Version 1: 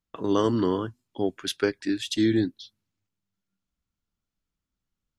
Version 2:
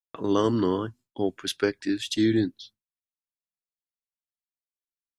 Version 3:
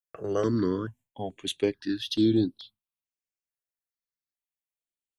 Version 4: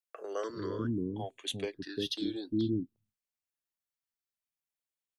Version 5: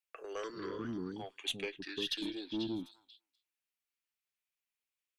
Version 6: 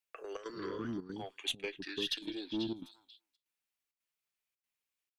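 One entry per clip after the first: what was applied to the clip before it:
downward expander −47 dBFS
step-sequenced phaser 2.3 Hz 970–6,700 Hz
in parallel at 0 dB: downward compressor, threshold −33 dBFS, peak gain reduction 13.5 dB; on the sum: multiband delay without the direct sound highs, lows 350 ms, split 400 Hz; level −7.5 dB
tube saturation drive 26 dB, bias 0.2; graphic EQ with 15 bands 100 Hz −12 dB, 250 Hz −3 dB, 630 Hz −5 dB, 2,500 Hz +9 dB; echo through a band-pass that steps 248 ms, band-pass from 1,500 Hz, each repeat 1.4 octaves, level −6.5 dB; level −1.5 dB
gate pattern "xxxx.xxxxxx.x" 165 BPM −12 dB; level +1 dB

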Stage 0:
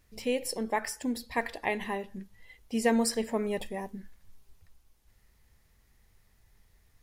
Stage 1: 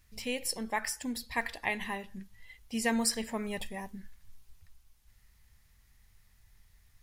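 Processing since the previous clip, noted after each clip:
parametric band 420 Hz −10.5 dB 2 octaves
level +2 dB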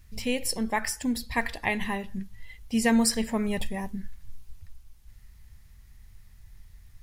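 low-shelf EQ 260 Hz +9 dB
level +4 dB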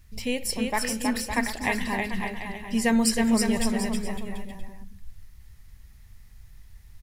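bouncing-ball delay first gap 320 ms, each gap 0.75×, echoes 5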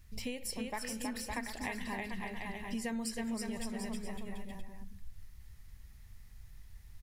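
downward compressor 5 to 1, threshold −32 dBFS, peak gain reduction 13 dB
level −4 dB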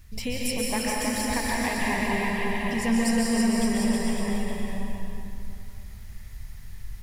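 dense smooth reverb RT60 2.7 s, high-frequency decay 0.75×, pre-delay 115 ms, DRR −4 dB
level +8 dB

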